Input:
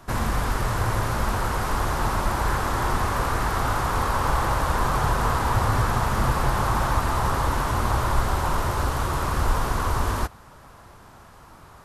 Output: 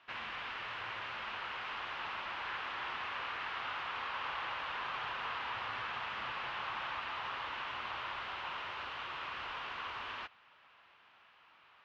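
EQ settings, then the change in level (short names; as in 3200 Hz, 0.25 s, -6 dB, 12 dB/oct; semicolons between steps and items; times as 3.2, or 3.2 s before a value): band-pass 2800 Hz, Q 3.1; air absorption 250 m; +3.0 dB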